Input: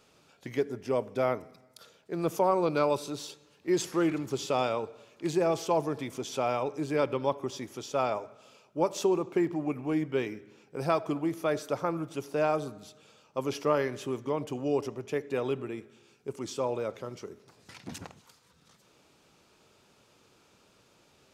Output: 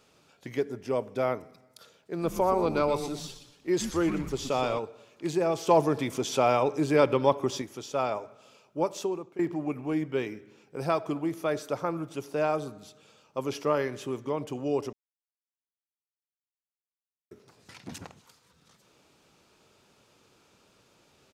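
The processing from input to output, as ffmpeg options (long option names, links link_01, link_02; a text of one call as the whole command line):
ffmpeg -i in.wav -filter_complex "[0:a]asplit=3[link_01][link_02][link_03];[link_01]afade=type=out:start_time=2.2:duration=0.02[link_04];[link_02]asplit=5[link_05][link_06][link_07][link_08][link_09];[link_06]adelay=121,afreqshift=-140,volume=-9.5dB[link_10];[link_07]adelay=242,afreqshift=-280,volume=-18.4dB[link_11];[link_08]adelay=363,afreqshift=-420,volume=-27.2dB[link_12];[link_09]adelay=484,afreqshift=-560,volume=-36.1dB[link_13];[link_05][link_10][link_11][link_12][link_13]amix=inputs=5:normalize=0,afade=type=in:start_time=2.2:duration=0.02,afade=type=out:start_time=4.78:duration=0.02[link_14];[link_03]afade=type=in:start_time=4.78:duration=0.02[link_15];[link_04][link_14][link_15]amix=inputs=3:normalize=0,asettb=1/sr,asplit=3[link_16][link_17][link_18];[link_16]atrim=end=5.674[link_19];[link_17]atrim=start=5.67:end=7.62,asetpts=PTS-STARTPTS,afade=type=in:duration=0.004:curve=qsin,afade=type=out:start_time=1.946:duration=0.004:curve=qsin,acontrast=52[link_20];[link_18]atrim=start=7.616[link_21];[link_19][link_20]acrossfade=duration=0.004:curve1=hsin:curve2=qsin[link_22];[link_22][link_21]acrossfade=duration=0.004:curve1=qsin:curve2=hsin,asplit=4[link_23][link_24][link_25][link_26];[link_23]atrim=end=9.39,asetpts=PTS-STARTPTS,afade=type=out:start_time=8.79:duration=0.6:silence=0.141254[link_27];[link_24]atrim=start=9.39:end=14.93,asetpts=PTS-STARTPTS,afade=type=in:duration=0.004:curve=hsin:silence=0.141254,afade=type=out:start_time=5.536:duration=0.004:curve=hsin[link_28];[link_25]atrim=start=14.93:end=17.31,asetpts=PTS-STARTPTS,volume=0[link_29];[link_26]atrim=start=17.31,asetpts=PTS-STARTPTS,afade=type=in:duration=0.004:curve=hsin[link_30];[link_27][link_28][link_29][link_30]concat=n=4:v=0:a=1" out.wav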